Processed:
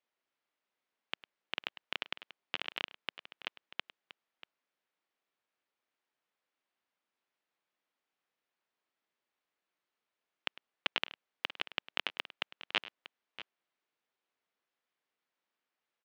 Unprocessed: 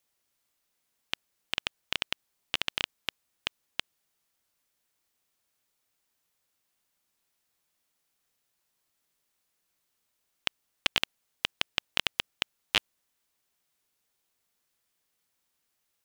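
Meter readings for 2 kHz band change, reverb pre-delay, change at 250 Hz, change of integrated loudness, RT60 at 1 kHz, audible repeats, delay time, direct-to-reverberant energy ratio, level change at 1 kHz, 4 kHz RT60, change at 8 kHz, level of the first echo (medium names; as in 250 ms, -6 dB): -5.0 dB, no reverb, -6.0 dB, -6.5 dB, no reverb, 2, 103 ms, no reverb, -3.5 dB, no reverb, -19.5 dB, -18.0 dB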